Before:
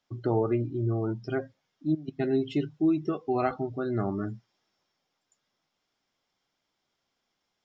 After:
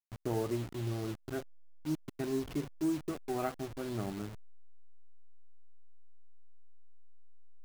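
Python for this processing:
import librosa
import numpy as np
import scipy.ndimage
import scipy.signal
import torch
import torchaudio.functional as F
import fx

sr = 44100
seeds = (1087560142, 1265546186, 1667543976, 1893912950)

y = fx.delta_hold(x, sr, step_db=-32.0)
y = y * librosa.db_to_amplitude(-7.5)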